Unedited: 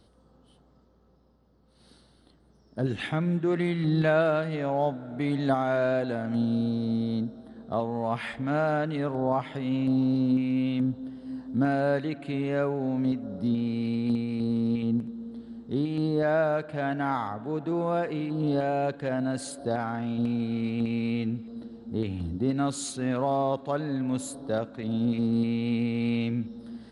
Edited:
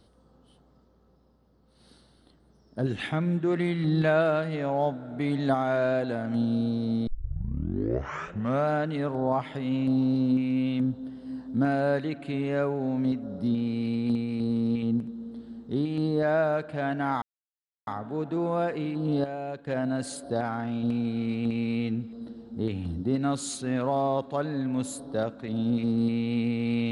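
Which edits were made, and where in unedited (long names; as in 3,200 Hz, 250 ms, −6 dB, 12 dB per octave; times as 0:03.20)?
0:07.07: tape start 1.64 s
0:17.22: splice in silence 0.65 s
0:18.59–0:19.02: clip gain −7.5 dB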